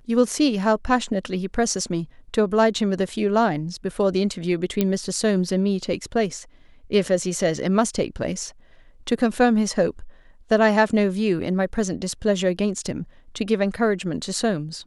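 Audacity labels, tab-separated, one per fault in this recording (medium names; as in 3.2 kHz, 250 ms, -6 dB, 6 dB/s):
4.810000	4.810000	pop -7 dBFS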